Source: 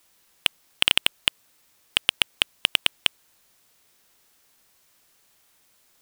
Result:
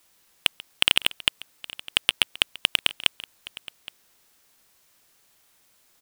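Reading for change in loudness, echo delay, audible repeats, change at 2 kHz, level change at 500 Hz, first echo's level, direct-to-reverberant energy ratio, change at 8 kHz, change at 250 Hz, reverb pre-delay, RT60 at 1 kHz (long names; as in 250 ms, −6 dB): 0.0 dB, 138 ms, 2, 0.0 dB, 0.0 dB, −20.0 dB, no reverb audible, 0.0 dB, 0.0 dB, no reverb audible, no reverb audible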